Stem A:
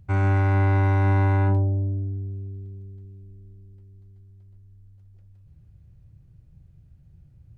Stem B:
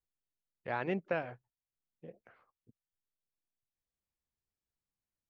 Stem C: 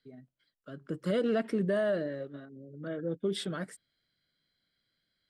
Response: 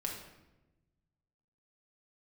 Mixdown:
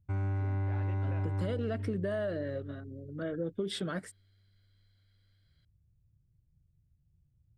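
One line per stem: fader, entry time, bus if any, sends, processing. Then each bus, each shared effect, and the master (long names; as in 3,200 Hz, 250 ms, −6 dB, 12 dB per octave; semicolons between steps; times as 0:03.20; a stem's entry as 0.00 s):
−15.0 dB, 0.00 s, no send, noise gate −43 dBFS, range −10 dB; low-shelf EQ 460 Hz +7.5 dB
−10.0 dB, 0.00 s, no send, no processing
+2.0 dB, 0.35 s, no send, high-shelf EQ 8,100 Hz −3.5 dB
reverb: not used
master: downward compressor 6 to 1, threshold −30 dBFS, peak gain reduction 9.5 dB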